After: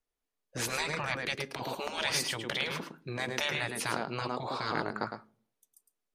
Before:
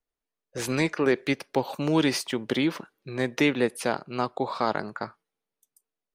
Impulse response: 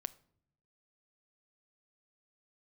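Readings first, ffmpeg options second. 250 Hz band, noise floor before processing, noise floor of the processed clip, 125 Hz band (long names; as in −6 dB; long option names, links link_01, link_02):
−14.5 dB, below −85 dBFS, below −85 dBFS, −7.0 dB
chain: -filter_complex "[0:a]asplit=2[link_01][link_02];[1:a]atrim=start_sample=2205,asetrate=70560,aresample=44100,adelay=108[link_03];[link_02][link_03]afir=irnorm=-1:irlink=0,volume=-2dB[link_04];[link_01][link_04]amix=inputs=2:normalize=0,afftfilt=real='re*lt(hypot(re,im),0.158)':imag='im*lt(hypot(re,im),0.158)':win_size=1024:overlap=0.75" -ar 32000 -c:a libmp3lame -b:a 64k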